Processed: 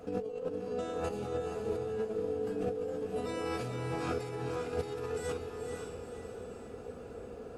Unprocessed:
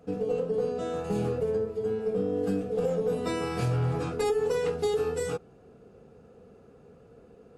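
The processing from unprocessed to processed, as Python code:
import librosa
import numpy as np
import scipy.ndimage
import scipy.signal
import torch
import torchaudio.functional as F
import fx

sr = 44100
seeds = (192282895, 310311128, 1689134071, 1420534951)

y = fx.peak_eq(x, sr, hz=160.0, db=-10.0, octaves=0.73)
y = fx.over_compress(y, sr, threshold_db=-38.0, ratio=-1.0)
y = fx.echo_diffused(y, sr, ms=497, feedback_pct=46, wet_db=-3.5)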